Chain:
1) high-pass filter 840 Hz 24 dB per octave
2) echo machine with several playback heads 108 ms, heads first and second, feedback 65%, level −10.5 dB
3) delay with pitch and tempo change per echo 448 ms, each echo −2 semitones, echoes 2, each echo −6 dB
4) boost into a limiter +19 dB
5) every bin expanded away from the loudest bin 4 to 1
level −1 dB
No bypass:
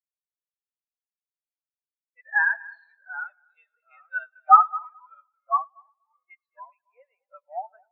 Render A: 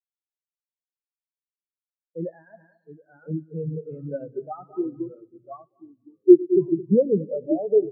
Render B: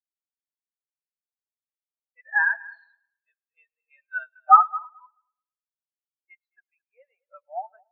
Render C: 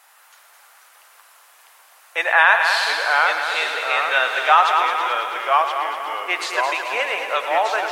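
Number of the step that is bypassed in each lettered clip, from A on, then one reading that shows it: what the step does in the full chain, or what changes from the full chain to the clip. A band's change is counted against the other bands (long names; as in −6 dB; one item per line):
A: 1, change in crest factor −3.0 dB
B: 3, change in momentary loudness spread −1 LU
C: 5, change in crest factor −7.5 dB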